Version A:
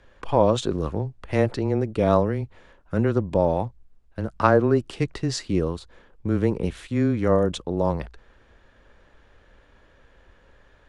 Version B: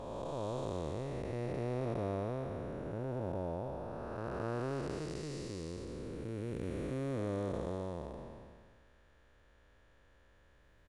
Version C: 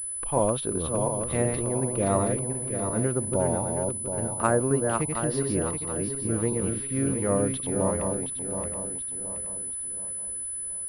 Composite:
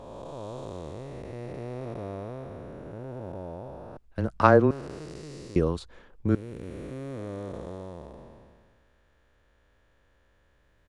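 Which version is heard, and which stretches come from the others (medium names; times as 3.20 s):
B
3.97–4.71 s: from A
5.56–6.35 s: from A
not used: C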